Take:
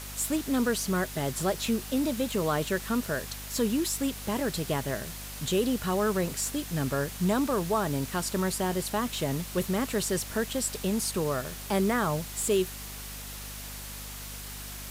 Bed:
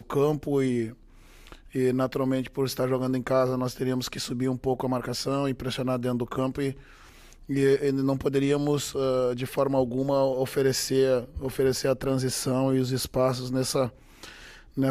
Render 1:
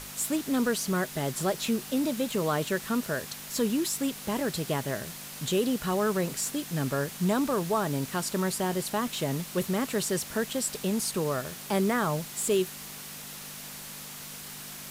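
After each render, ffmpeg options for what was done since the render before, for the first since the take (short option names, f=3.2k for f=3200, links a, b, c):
-af "bandreject=f=50:t=h:w=6,bandreject=f=100:t=h:w=6"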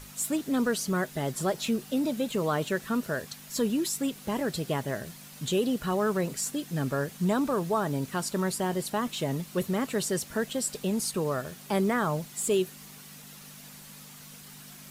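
-af "afftdn=nr=8:nf=-42"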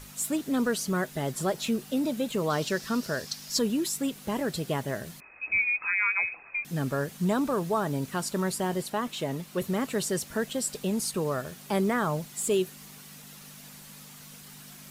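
-filter_complex "[0:a]asettb=1/sr,asplit=3[a][b][c];[a]atrim=end=2.504[d];[b]atrim=start=2.5:end=3.59,asetpts=PTS-STARTPTS,afade=t=in:d=0.004:c=qsin,afade=t=out:st=1.086:d=0.004:c=qsin,equalizer=f=5.1k:w=1.9:g=12[e];[c]atrim=start=3.586[f];[d][e]acrossfade=d=0.004:c1=hsin:c2=qsin[g];[g][f]acrossfade=d=0.004:c1=qsin:c2=hsin,asettb=1/sr,asplit=3[h][i][j];[h]atrim=end=5.204[k];[i]atrim=start=5.2:end=6.65,asetpts=PTS-STARTPTS,afade=t=in:d=0.004:c=qsin,afade=t=out:st=1.446:d=0.004:c=qsin,lowpass=f=2.3k:t=q:w=0.5098,lowpass=f=2.3k:t=q:w=0.6013,lowpass=f=2.3k:t=q:w=0.9,lowpass=f=2.3k:t=q:w=2.563,afreqshift=-2700[l];[j]atrim=start=6.646[m];[k][l]acrossfade=d=0.004:c1=hsin:c2=qsin[n];[n][m]acrossfade=d=0.004:c1=qsin:c2=hsin,asettb=1/sr,asplit=3[o][p][q];[o]atrim=end=8.824[r];[p]atrim=start=8.82:end=9.62,asetpts=PTS-STARTPTS,afade=t=in:d=0.004:c=qsin,afade=t=out:st=0.796:d=0.004:c=qsin,bass=f=250:g=-4,treble=f=4k:g=-3[s];[q]atrim=start=9.616[t];[r][s]acrossfade=d=0.004:c1=hsin:c2=qsin[u];[u][t]acrossfade=d=0.004:c1=qsin:c2=hsin"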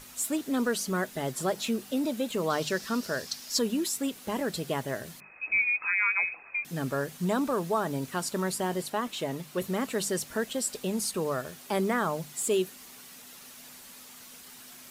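-af "lowshelf=f=150:g=-6,bandreject=f=50:t=h:w=6,bandreject=f=100:t=h:w=6,bandreject=f=150:t=h:w=6,bandreject=f=200:t=h:w=6"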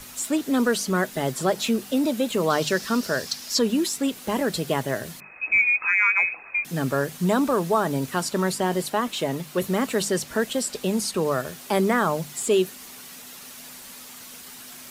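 -filter_complex "[0:a]acrossover=split=130|6700[a][b][c];[c]alimiter=level_in=8dB:limit=-24dB:level=0:latency=1:release=232,volume=-8dB[d];[a][b][d]amix=inputs=3:normalize=0,acontrast=67"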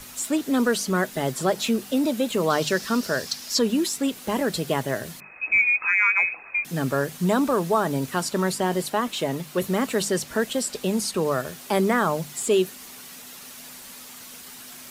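-af anull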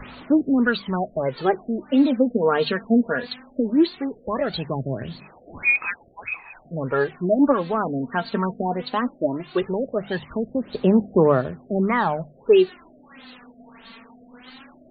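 -af "aphaser=in_gain=1:out_gain=1:delay=4.4:decay=0.62:speed=0.18:type=sinusoidal,afftfilt=real='re*lt(b*sr/1024,720*pow(4700/720,0.5+0.5*sin(2*PI*1.6*pts/sr)))':imag='im*lt(b*sr/1024,720*pow(4700/720,0.5+0.5*sin(2*PI*1.6*pts/sr)))':win_size=1024:overlap=0.75"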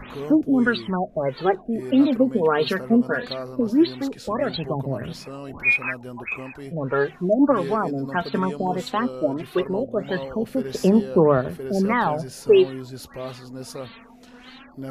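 -filter_complex "[1:a]volume=-9.5dB[a];[0:a][a]amix=inputs=2:normalize=0"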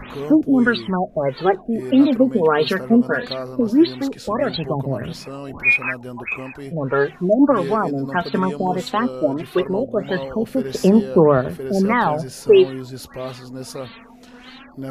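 -af "volume=3.5dB,alimiter=limit=-3dB:level=0:latency=1"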